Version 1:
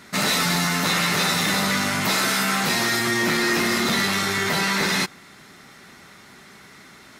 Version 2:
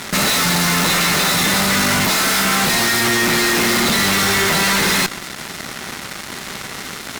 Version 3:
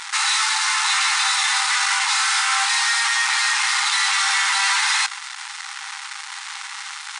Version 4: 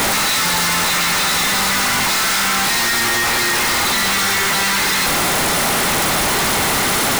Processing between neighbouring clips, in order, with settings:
fuzz box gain 40 dB, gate -45 dBFS; peak limiter -13.5 dBFS, peak gain reduction 3.5 dB
FFT band-pass 770–10000 Hz; trim -2 dB
one-bit comparator; trim +4.5 dB

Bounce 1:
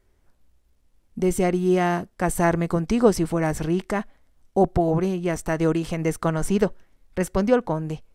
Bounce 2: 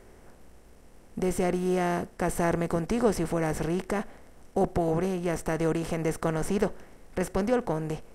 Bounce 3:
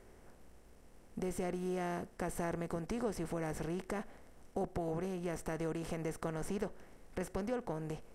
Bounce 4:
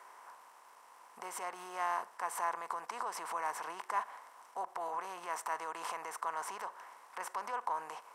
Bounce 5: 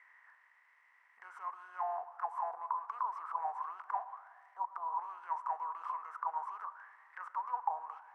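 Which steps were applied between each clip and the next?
spectral levelling over time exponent 0.6; trim -8.5 dB
compression 2:1, threshold -31 dBFS, peak gain reduction 7.5 dB; trim -6.5 dB
peak limiter -33.5 dBFS, peak gain reduction 9 dB; resonant high-pass 1 kHz, resonance Q 6.5; trim +5 dB
auto-wah 740–2100 Hz, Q 12, down, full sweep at -32 dBFS; on a send at -16 dB: reverberation RT60 2.0 s, pre-delay 93 ms; on the sum: trim +8.5 dB

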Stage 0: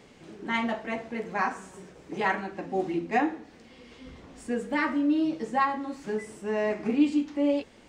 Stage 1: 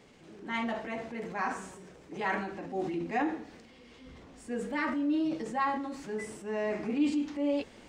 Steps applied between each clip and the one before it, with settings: transient shaper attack -3 dB, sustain +6 dB; trim -4.5 dB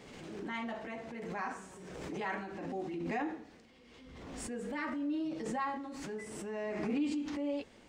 swell ahead of each attack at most 31 dB/s; trim -6.5 dB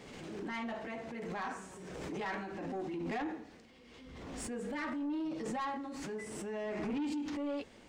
saturation -33.5 dBFS, distortion -14 dB; trim +1.5 dB

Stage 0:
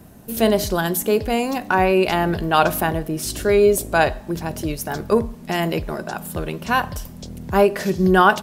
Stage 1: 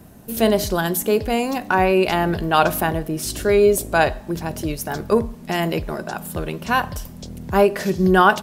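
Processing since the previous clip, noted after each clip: no audible change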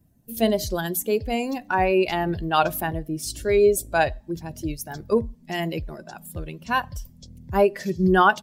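expander on every frequency bin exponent 1.5; trim -1.5 dB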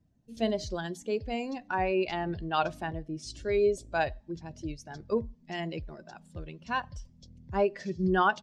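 low-pass 6.5 kHz 24 dB/octave; trim -8 dB

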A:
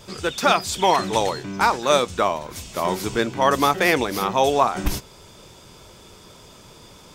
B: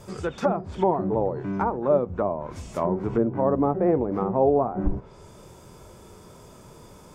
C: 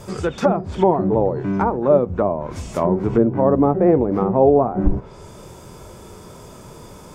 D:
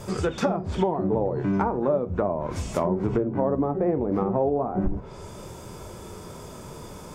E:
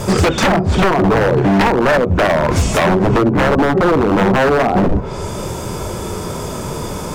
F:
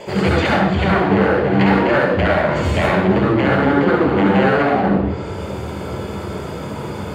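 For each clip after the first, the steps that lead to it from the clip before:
harmonic-percussive split percussive -7 dB; peaking EQ 3.7 kHz -13.5 dB 1.8 oct; low-pass that closes with the level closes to 640 Hz, closed at -22.5 dBFS; trim +3.5 dB
dynamic bell 1.1 kHz, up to -3 dB, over -36 dBFS, Q 0.76; trim +7.5 dB
compression 5:1, threshold -20 dBFS, peak gain reduction 10.5 dB; flange 0.36 Hz, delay 9.5 ms, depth 4.6 ms, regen -77%; trim +4 dB
in parallel at +1 dB: gain riding 0.5 s; on the sum: wavefolder -16 dBFS; trim +9 dB
reverberation RT60 0.85 s, pre-delay 67 ms, DRR -3 dB; trim -16.5 dB

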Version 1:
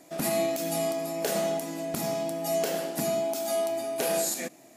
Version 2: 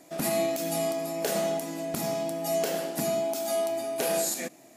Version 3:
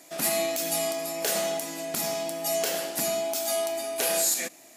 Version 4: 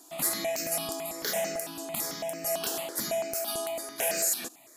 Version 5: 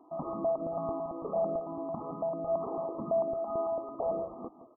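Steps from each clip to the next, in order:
no audible change
tilt shelf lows -5 dB, about 1.1 kHz; saturation -16 dBFS, distortion -24 dB; bass shelf 130 Hz -9 dB; trim +2 dB
stepped phaser 9 Hz 570–3400 Hz
in parallel at -10 dB: integer overflow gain 23.5 dB; on the sum: brick-wall FIR low-pass 1.3 kHz; delay 168 ms -13.5 dB

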